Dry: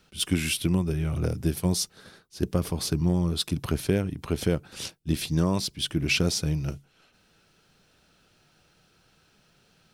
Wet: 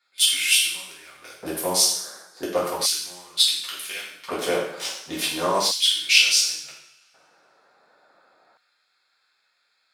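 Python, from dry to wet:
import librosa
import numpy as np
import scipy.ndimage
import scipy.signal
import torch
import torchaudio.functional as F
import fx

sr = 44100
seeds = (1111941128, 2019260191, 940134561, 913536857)

y = fx.wiener(x, sr, points=15)
y = fx.rev_double_slope(y, sr, seeds[0], early_s=0.68, late_s=2.0, knee_db=-27, drr_db=-8.0)
y = fx.filter_lfo_highpass(y, sr, shape='square', hz=0.35, low_hz=730.0, high_hz=2600.0, q=0.96)
y = F.gain(torch.from_numpy(y), 3.5).numpy()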